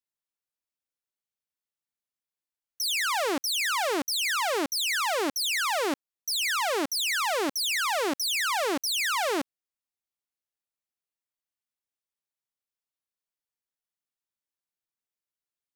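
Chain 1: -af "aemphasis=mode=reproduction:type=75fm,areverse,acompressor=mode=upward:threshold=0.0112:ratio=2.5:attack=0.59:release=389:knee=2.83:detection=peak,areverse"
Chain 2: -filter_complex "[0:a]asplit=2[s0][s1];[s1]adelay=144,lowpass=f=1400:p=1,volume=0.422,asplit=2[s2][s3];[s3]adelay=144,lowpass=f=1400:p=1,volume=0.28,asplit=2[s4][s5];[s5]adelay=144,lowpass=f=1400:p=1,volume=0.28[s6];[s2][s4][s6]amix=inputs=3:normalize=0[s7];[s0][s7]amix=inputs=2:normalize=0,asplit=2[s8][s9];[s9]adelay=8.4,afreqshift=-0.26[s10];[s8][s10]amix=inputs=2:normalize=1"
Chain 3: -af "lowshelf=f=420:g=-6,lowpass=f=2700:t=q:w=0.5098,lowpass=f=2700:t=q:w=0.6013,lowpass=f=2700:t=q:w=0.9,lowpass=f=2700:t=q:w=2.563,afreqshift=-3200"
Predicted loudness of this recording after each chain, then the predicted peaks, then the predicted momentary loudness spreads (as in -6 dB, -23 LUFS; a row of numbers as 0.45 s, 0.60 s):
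-29.0 LUFS, -29.0 LUFS, -29.0 LUFS; -21.5 dBFS, -19.5 dBFS, -20.5 dBFS; 4 LU, 4 LU, 4 LU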